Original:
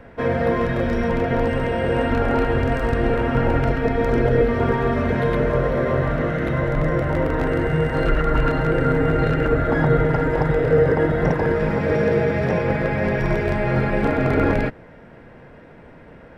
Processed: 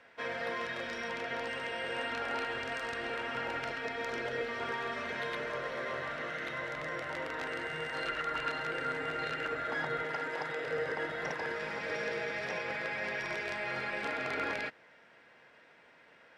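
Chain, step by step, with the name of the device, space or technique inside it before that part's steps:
piezo pickup straight into a mixer (low-pass filter 5,100 Hz 12 dB per octave; first difference)
0:10.02–0:10.67: high-pass filter 150 Hz 12 dB per octave
level +4.5 dB

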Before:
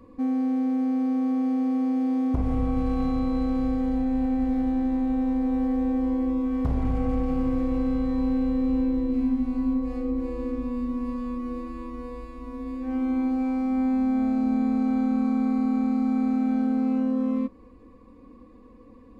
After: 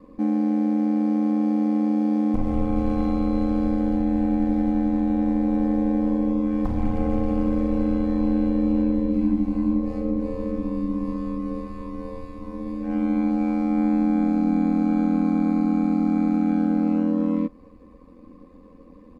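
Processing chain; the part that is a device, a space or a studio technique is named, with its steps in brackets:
ring-modulated robot voice (ring modulation 43 Hz; comb filter 3.9 ms, depth 68%)
level +2.5 dB

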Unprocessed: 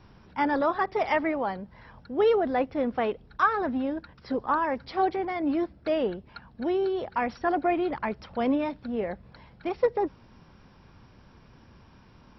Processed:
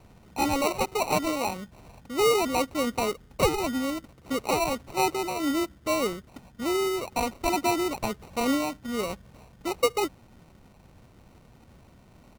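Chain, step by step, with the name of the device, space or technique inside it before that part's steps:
crushed at another speed (tape speed factor 0.8×; decimation without filtering 33×; tape speed factor 1.25×)

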